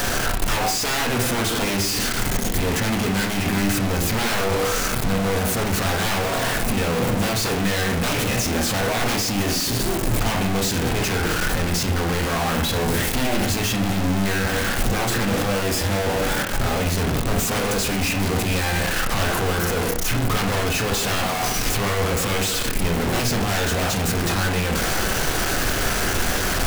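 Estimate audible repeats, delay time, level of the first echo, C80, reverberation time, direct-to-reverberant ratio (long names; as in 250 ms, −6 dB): no echo audible, no echo audible, no echo audible, 13.5 dB, 0.55 s, 3.0 dB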